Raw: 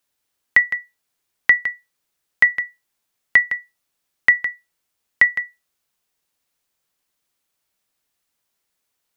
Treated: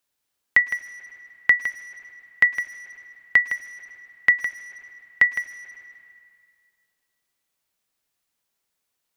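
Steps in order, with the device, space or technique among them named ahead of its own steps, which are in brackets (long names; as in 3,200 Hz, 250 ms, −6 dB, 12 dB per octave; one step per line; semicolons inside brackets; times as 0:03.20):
saturated reverb return (on a send at −10 dB: convolution reverb RT60 1.9 s, pre-delay 101 ms + soft clipping −25.5 dBFS, distortion −4 dB)
on the sum: level −3 dB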